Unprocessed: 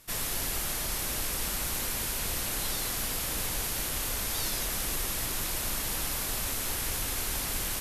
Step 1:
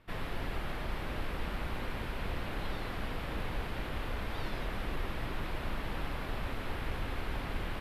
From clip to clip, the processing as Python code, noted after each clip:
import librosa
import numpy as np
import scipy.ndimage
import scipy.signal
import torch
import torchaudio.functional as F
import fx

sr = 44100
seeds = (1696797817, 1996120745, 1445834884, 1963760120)

y = fx.air_absorb(x, sr, metres=470.0)
y = y * 10.0 ** (1.0 / 20.0)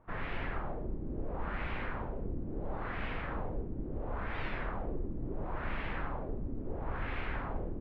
y = fx.filter_lfo_lowpass(x, sr, shape='sine', hz=0.73, low_hz=300.0, high_hz=2400.0, q=1.8)
y = y * 10.0 ** (-1.0 / 20.0)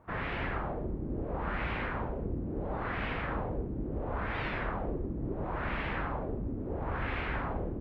y = scipy.signal.sosfilt(scipy.signal.butter(2, 41.0, 'highpass', fs=sr, output='sos'), x)
y = y * 10.0 ** (4.5 / 20.0)